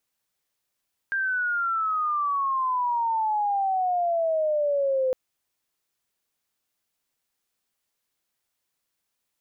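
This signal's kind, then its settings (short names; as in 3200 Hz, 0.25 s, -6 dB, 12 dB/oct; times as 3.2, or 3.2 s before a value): chirp logarithmic 1600 Hz -> 510 Hz -23 dBFS -> -20.5 dBFS 4.01 s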